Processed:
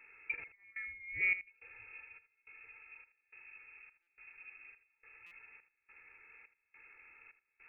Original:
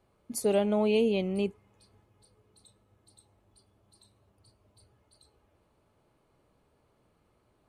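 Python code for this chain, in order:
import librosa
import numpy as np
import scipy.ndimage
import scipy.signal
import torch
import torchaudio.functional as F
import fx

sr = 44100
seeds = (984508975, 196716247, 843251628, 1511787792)

p1 = x + 0.6 * np.pad(x, (int(2.3 * sr / 1000.0), 0))[:len(x)]
p2 = fx.over_compress(p1, sr, threshold_db=-34.0, ratio=-0.5)
p3 = fx.step_gate(p2, sr, bpm=158, pattern='xxxxx...x', floor_db=-24.0, edge_ms=4.5)
p4 = p3 + fx.echo_single(p3, sr, ms=80, db=-13.5, dry=0)
p5 = fx.freq_invert(p4, sr, carrier_hz=2600)
p6 = fx.buffer_glitch(p5, sr, at_s=(4.02, 5.26), block=256, repeats=8)
y = p6 * 10.0 ** (-1.0 / 20.0)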